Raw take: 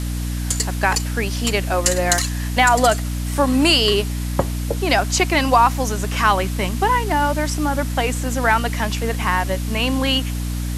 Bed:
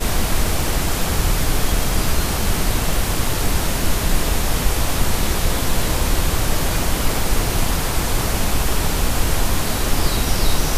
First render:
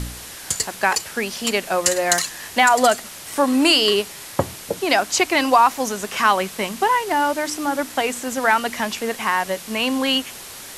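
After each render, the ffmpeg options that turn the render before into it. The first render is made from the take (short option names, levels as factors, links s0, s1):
-af "bandreject=f=60:t=h:w=4,bandreject=f=120:t=h:w=4,bandreject=f=180:t=h:w=4,bandreject=f=240:t=h:w=4,bandreject=f=300:t=h:w=4"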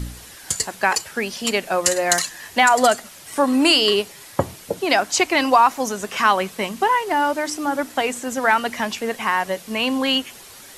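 -af "afftdn=nr=7:nf=-37"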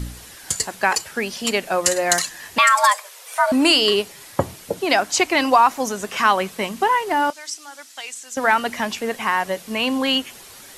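-filter_complex "[0:a]asettb=1/sr,asplit=3[s0][s1][s2];[s0]atrim=end=2.584[s3];[s1]atrim=start=2.58:end=3.52,asetpts=PTS-STARTPTS,afade=t=in:d=0.004:c=qsin,afade=t=out:st=0.936:d=0.004:c=qsin,afreqshift=380[s4];[s2]atrim=start=3.516[s5];[s3][s4]acrossfade=d=0.004:c1=hsin:c2=qsin[s6];[s6][s5]acrossfade=d=0.004:c1=qsin:c2=hsin,asettb=1/sr,asplit=3[s7][s8][s9];[s7]atrim=end=7.304[s10];[s8]atrim=start=7.3:end=8.37,asetpts=PTS-STARTPTS,afade=t=in:d=0.004:c=qsin,afade=t=out:st=1.066:d=0.004:c=qsin,bandpass=f=5900:t=q:w=1[s11];[s9]atrim=start=8.366[s12];[s10][s11]acrossfade=d=0.004:c1=hsin:c2=qsin[s13];[s13][s12]acrossfade=d=0.004:c1=qsin:c2=hsin"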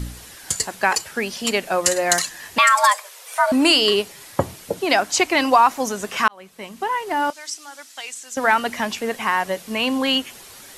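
-filter_complex "[0:a]asplit=2[s0][s1];[s0]atrim=end=6.28,asetpts=PTS-STARTPTS,afade=t=out:st=6.276:d=0.004:c=hsin[s2];[s1]atrim=start=6.28,asetpts=PTS-STARTPTS,afade=t=in:d=1.16[s3];[s2][s3]concat=n=2:v=0:a=1"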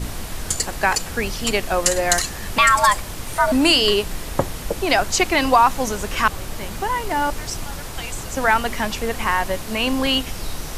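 -filter_complex "[1:a]volume=0.266[s0];[0:a][s0]amix=inputs=2:normalize=0"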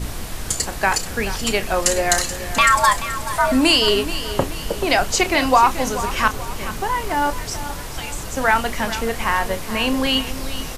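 -filter_complex "[0:a]asplit=2[s0][s1];[s1]adelay=31,volume=0.251[s2];[s0][s2]amix=inputs=2:normalize=0,aecho=1:1:431|862|1293|1724:0.224|0.0963|0.0414|0.0178"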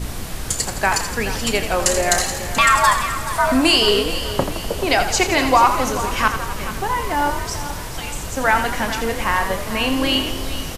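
-filter_complex "[0:a]asplit=8[s0][s1][s2][s3][s4][s5][s6][s7];[s1]adelay=83,afreqshift=39,volume=0.335[s8];[s2]adelay=166,afreqshift=78,volume=0.195[s9];[s3]adelay=249,afreqshift=117,volume=0.112[s10];[s4]adelay=332,afreqshift=156,volume=0.0653[s11];[s5]adelay=415,afreqshift=195,volume=0.038[s12];[s6]adelay=498,afreqshift=234,volume=0.0219[s13];[s7]adelay=581,afreqshift=273,volume=0.0127[s14];[s0][s8][s9][s10][s11][s12][s13][s14]amix=inputs=8:normalize=0"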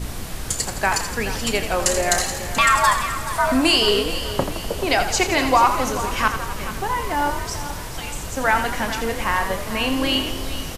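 -af "volume=0.794"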